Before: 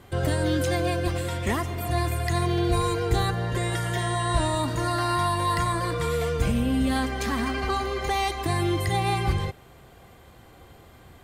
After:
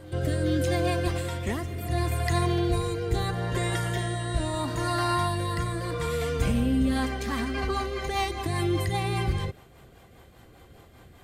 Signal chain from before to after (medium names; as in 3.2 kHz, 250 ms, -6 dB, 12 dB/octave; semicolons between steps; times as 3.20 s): rotary cabinet horn 0.75 Hz, later 5 Hz, at 6.62 s; reverse echo 398 ms -19 dB